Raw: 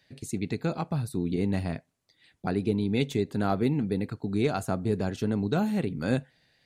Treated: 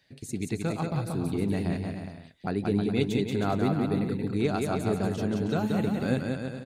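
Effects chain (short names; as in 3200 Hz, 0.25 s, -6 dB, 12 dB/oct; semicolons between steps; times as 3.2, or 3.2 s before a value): bouncing-ball echo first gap 0.18 s, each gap 0.75×, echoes 5; gain -1.5 dB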